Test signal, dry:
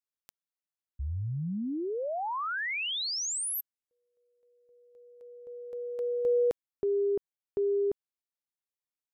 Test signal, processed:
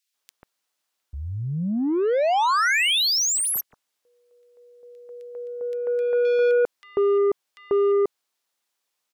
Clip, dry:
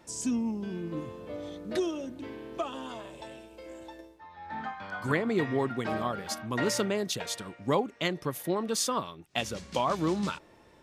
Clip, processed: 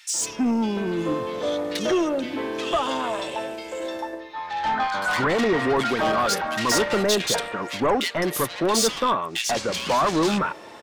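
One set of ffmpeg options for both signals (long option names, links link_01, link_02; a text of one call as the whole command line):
ffmpeg -i in.wav -filter_complex "[0:a]asplit=2[link_01][link_02];[link_02]highpass=frequency=720:poles=1,volume=26dB,asoftclip=type=tanh:threshold=-12.5dB[link_03];[link_01][link_03]amix=inputs=2:normalize=0,lowpass=frequency=5900:poles=1,volume=-6dB,acrossover=split=2000[link_04][link_05];[link_04]adelay=140[link_06];[link_06][link_05]amix=inputs=2:normalize=0" out.wav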